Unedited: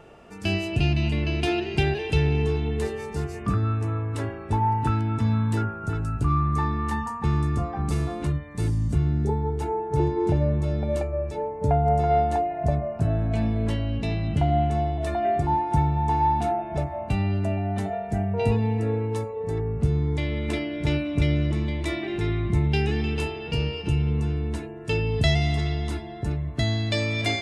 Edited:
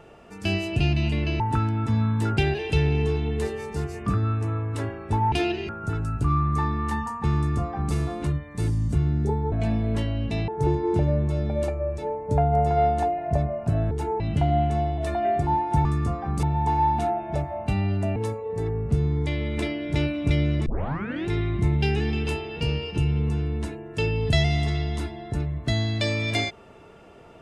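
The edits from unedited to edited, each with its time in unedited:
1.4–1.77 swap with 4.72–5.69
7.36–7.94 copy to 15.85
9.52–9.81 swap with 13.24–14.2
17.58–19.07 cut
21.57 tape start 0.60 s

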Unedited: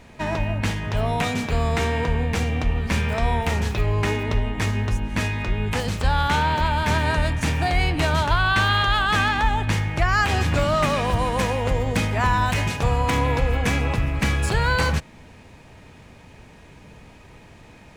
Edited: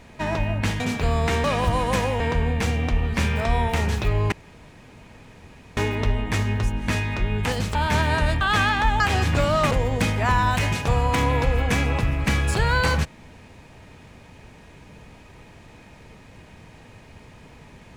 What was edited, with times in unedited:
0.8–1.29 cut
4.05 insert room tone 1.45 s
6.03–6.71 cut
7.37–9 cut
9.59–10.19 cut
10.9–11.66 move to 1.93

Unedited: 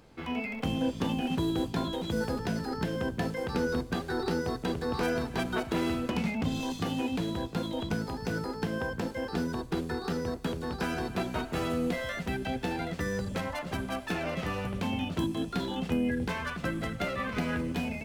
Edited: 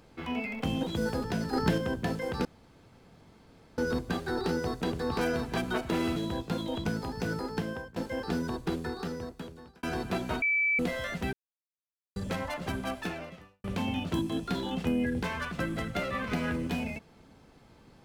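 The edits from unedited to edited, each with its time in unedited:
0.83–1.98 cut
2.68–2.93 gain +5.5 dB
3.6 insert room tone 1.33 s
5.98–7.21 cut
8.63–9.01 fade out, to -22 dB
9.73–10.88 fade out
11.47–11.84 bleep 2310 Hz -23.5 dBFS
12.38–13.21 mute
14.03–14.69 fade out quadratic

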